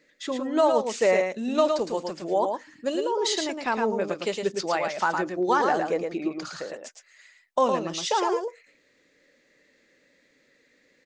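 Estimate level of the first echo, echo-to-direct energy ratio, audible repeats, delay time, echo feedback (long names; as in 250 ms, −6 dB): −5.0 dB, −5.0 dB, 1, 111 ms, repeats not evenly spaced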